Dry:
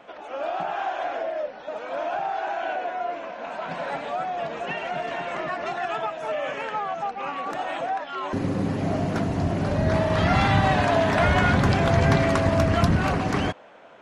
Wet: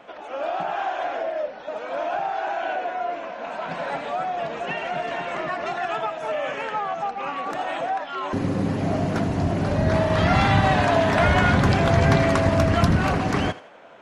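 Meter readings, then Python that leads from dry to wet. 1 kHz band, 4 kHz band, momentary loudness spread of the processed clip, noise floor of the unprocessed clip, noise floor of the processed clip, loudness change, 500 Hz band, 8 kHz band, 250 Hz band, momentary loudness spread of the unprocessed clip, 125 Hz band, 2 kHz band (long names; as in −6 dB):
+1.5 dB, +1.5 dB, 11 LU, −41 dBFS, −39 dBFS, +1.5 dB, +1.5 dB, +1.5 dB, +1.5 dB, 11 LU, +1.5 dB, +1.5 dB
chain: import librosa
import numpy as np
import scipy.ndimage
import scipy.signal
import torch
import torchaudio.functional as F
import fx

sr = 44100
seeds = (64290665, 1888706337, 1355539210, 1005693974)

y = fx.echo_thinned(x, sr, ms=81, feedback_pct=35, hz=420.0, wet_db=-15.5)
y = y * 10.0 ** (1.5 / 20.0)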